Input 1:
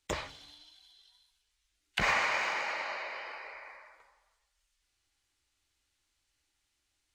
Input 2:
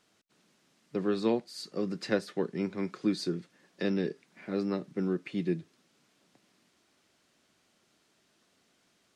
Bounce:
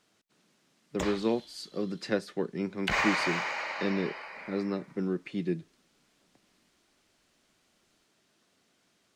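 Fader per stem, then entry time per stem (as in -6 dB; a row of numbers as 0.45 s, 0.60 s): +0.5 dB, -0.5 dB; 0.90 s, 0.00 s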